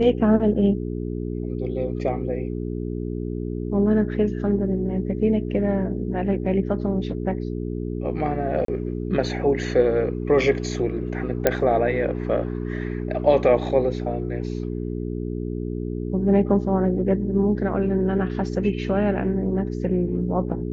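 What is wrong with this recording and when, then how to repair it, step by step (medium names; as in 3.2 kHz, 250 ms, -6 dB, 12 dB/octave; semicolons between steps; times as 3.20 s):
hum 60 Hz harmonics 7 -28 dBFS
8.65–8.68 s: dropout 33 ms
11.47 s: pop -4 dBFS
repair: de-click; de-hum 60 Hz, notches 7; interpolate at 8.65 s, 33 ms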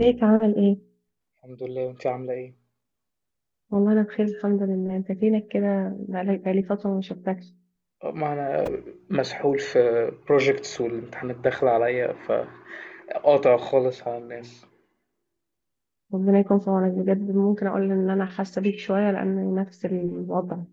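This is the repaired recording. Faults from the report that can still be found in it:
nothing left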